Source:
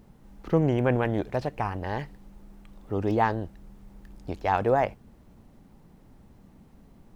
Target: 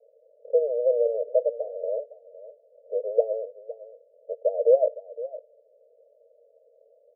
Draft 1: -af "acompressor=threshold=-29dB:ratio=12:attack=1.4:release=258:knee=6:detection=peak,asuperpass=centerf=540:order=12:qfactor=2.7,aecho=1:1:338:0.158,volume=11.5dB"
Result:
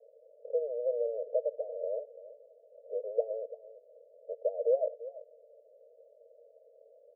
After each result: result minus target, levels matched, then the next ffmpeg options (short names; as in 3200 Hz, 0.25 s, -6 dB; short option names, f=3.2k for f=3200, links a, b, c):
compressor: peak gain reduction +9.5 dB; echo 0.172 s early
-af "acompressor=threshold=-18.5dB:ratio=12:attack=1.4:release=258:knee=6:detection=peak,asuperpass=centerf=540:order=12:qfactor=2.7,aecho=1:1:338:0.158,volume=11.5dB"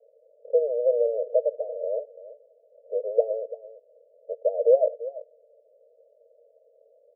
echo 0.172 s early
-af "acompressor=threshold=-18.5dB:ratio=12:attack=1.4:release=258:knee=6:detection=peak,asuperpass=centerf=540:order=12:qfactor=2.7,aecho=1:1:510:0.158,volume=11.5dB"